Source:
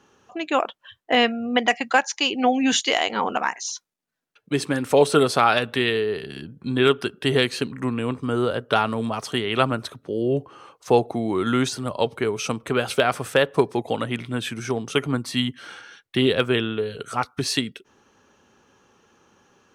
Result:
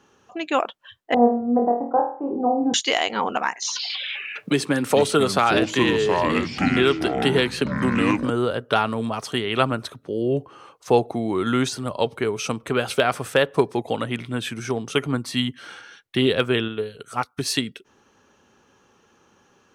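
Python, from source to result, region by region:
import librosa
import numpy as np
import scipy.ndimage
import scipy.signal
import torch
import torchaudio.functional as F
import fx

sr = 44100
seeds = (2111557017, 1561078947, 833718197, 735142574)

y = fx.chain(x, sr, fx.steep_lowpass(hz=940.0, slope=36),
    fx.room_flutter(wall_m=4.3, rt60_s=0.46), at=(1.14, 2.74))
y = fx.chain(y, sr, fx.highpass(hz=120.0, slope=12),
    fx.echo_pitch(ms=137, semitones=-5, count=3, db_per_echo=-6.0),
    fx.band_squash(depth_pct=70), at=(3.62, 8.3))
y = fx.chain(y, sr, fx.high_shelf(hz=9800.0, db=9.5),
    fx.upward_expand(threshold_db=-37.0, expansion=1.5), at=(16.68, 17.54))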